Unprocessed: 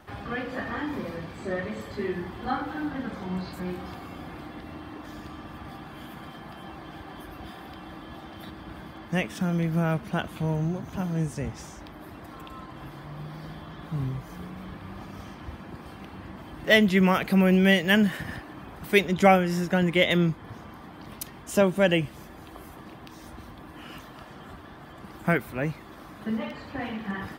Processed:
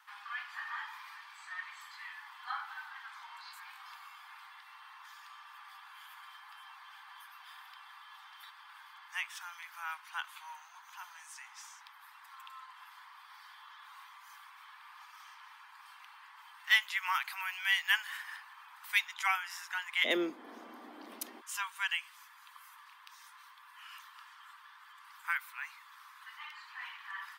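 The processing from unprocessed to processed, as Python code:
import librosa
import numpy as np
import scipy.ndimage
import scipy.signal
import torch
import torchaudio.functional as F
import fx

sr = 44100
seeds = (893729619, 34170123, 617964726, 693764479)

y = fx.steep_highpass(x, sr, hz=fx.steps((0.0, 890.0), (20.04, 230.0), (21.4, 940.0)), slope=72)
y = y * librosa.db_to_amplitude(-5.0)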